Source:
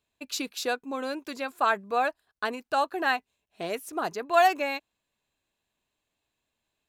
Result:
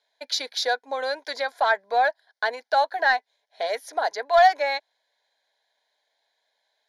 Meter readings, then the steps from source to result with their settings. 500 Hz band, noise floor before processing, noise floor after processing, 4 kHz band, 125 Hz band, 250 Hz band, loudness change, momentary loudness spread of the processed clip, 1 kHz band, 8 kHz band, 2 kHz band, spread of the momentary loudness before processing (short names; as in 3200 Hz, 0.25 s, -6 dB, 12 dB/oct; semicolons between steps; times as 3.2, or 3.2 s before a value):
+5.0 dB, -83 dBFS, -76 dBFS, +7.0 dB, under -10 dB, under -10 dB, +4.5 dB, 11 LU, +4.5 dB, +1.5 dB, +5.5 dB, 12 LU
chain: elliptic band-pass 390–9600 Hz, stop band 40 dB; in parallel at +1 dB: compressor, threshold -36 dBFS, peak gain reduction 18 dB; on the sum: soft clip -12 dBFS, distortion -21 dB; fixed phaser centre 1800 Hz, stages 8; gain +6 dB